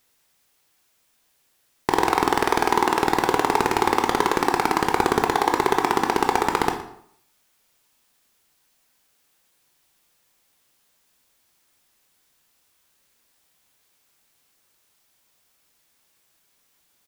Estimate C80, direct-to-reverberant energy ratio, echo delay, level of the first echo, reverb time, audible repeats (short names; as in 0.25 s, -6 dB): 11.0 dB, 4.5 dB, 0.117 s, -16.5 dB, 0.65 s, 1